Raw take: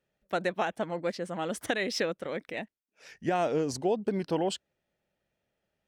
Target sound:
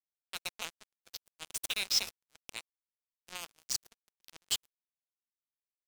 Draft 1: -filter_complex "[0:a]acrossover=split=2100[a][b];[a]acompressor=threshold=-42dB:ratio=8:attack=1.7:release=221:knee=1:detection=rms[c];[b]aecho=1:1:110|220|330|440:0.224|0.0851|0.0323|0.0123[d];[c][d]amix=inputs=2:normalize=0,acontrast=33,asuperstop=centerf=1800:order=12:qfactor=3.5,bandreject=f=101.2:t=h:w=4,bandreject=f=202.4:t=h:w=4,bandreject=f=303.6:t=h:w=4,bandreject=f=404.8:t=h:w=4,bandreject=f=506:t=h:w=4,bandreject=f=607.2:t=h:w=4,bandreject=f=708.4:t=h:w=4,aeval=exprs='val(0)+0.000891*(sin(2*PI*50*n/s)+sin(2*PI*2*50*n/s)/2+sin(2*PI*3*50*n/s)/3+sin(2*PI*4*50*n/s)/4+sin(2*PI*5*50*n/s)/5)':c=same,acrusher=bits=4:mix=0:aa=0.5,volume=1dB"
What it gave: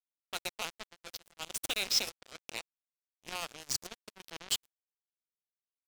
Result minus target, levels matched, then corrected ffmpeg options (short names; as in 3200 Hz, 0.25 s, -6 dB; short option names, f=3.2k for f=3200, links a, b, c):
compressor: peak gain reduction -7 dB
-filter_complex "[0:a]acrossover=split=2100[a][b];[a]acompressor=threshold=-50dB:ratio=8:attack=1.7:release=221:knee=1:detection=rms[c];[b]aecho=1:1:110|220|330|440:0.224|0.0851|0.0323|0.0123[d];[c][d]amix=inputs=2:normalize=0,acontrast=33,asuperstop=centerf=1800:order=12:qfactor=3.5,bandreject=f=101.2:t=h:w=4,bandreject=f=202.4:t=h:w=4,bandreject=f=303.6:t=h:w=4,bandreject=f=404.8:t=h:w=4,bandreject=f=506:t=h:w=4,bandreject=f=607.2:t=h:w=4,bandreject=f=708.4:t=h:w=4,aeval=exprs='val(0)+0.000891*(sin(2*PI*50*n/s)+sin(2*PI*2*50*n/s)/2+sin(2*PI*3*50*n/s)/3+sin(2*PI*4*50*n/s)/4+sin(2*PI*5*50*n/s)/5)':c=same,acrusher=bits=4:mix=0:aa=0.5,volume=1dB"